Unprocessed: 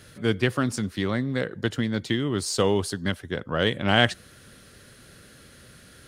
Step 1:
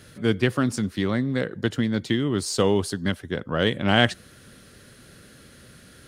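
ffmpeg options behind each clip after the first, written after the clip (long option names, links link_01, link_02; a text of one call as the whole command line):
ffmpeg -i in.wav -af "equalizer=frequency=230:width=0.8:gain=3" out.wav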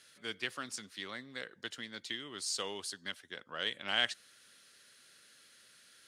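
ffmpeg -i in.wav -af "bandpass=frequency=5000:width_type=q:width=0.51:csg=0,volume=-6dB" out.wav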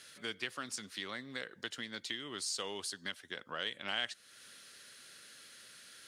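ffmpeg -i in.wav -af "acompressor=threshold=-47dB:ratio=2,volume=6dB" out.wav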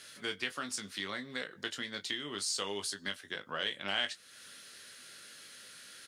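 ffmpeg -i in.wav -af "aecho=1:1:20|32:0.422|0.158,volume=2.5dB" out.wav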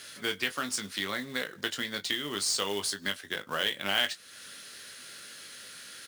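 ffmpeg -i in.wav -af "acrusher=bits=3:mode=log:mix=0:aa=0.000001,volume=5.5dB" out.wav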